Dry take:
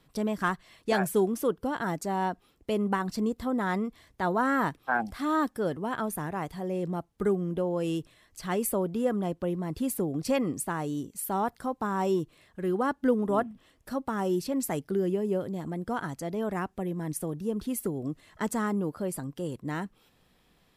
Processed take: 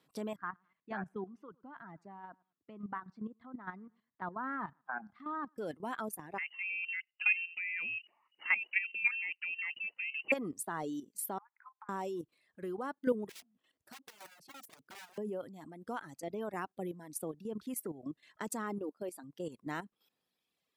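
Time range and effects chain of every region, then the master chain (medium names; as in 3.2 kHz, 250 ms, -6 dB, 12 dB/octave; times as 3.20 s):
0.36–5.58 s: Chebyshev band-pass 140–1300 Hz + peaking EQ 480 Hz -13.5 dB 1.6 oct + feedback delay 103 ms, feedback 30%, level -19.5 dB
6.38–10.32 s: peaking EQ 850 Hz +13 dB 0.49 oct + frequency inversion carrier 2.9 kHz
11.38–11.89 s: Chebyshev band-pass 840–2500 Hz, order 5 + compression 16:1, threshold -43 dBFS
13.29–15.18 s: integer overflow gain 28.5 dB + compression 20:1, threshold -43 dBFS
18.78–19.24 s: expander -34 dBFS + brick-wall FIR high-pass 180 Hz + upward compressor, threshold -33 dBFS
whole clip: reverb removal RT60 1.4 s; high-pass 210 Hz 12 dB/octave; level held to a coarse grid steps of 12 dB; trim -2 dB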